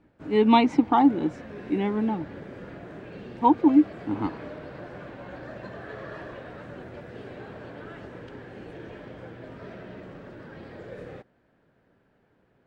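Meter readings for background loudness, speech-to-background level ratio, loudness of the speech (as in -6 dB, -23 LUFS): -41.5 LUFS, 18.5 dB, -23.0 LUFS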